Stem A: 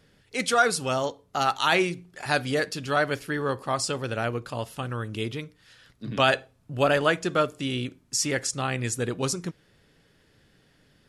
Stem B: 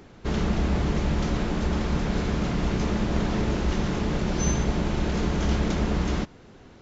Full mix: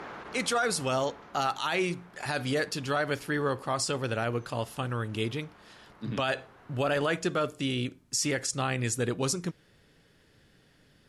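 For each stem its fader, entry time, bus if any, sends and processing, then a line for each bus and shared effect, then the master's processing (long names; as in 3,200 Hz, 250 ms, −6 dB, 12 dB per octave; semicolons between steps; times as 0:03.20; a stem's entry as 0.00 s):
−0.5 dB, 0.00 s, no send, no processing
−6.0 dB, 0.00 s, no send, resonant band-pass 1,200 Hz, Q 1.2; envelope flattener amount 100%; automatic ducking −15 dB, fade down 1.95 s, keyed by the first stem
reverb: not used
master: brickwall limiter −18.5 dBFS, peak gain reduction 9.5 dB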